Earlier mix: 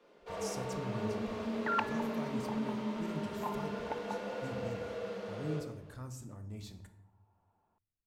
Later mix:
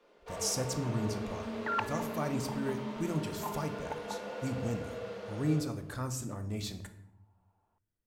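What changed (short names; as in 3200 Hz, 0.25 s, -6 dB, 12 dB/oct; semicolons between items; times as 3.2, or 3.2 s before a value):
speech +12.0 dB; master: add low shelf 200 Hz -7 dB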